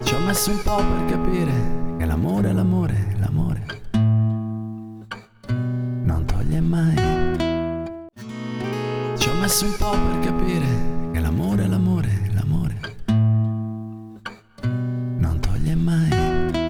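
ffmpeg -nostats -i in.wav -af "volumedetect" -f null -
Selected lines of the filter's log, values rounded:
mean_volume: -20.6 dB
max_volume: -6.2 dB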